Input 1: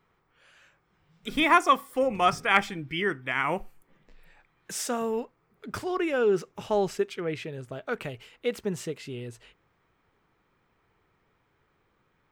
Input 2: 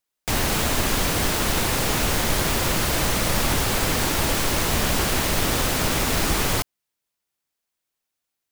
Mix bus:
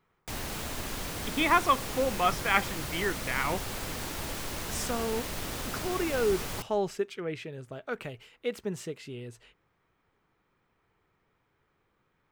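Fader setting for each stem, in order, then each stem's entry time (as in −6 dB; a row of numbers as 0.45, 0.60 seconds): −3.5, −14.0 decibels; 0.00, 0.00 seconds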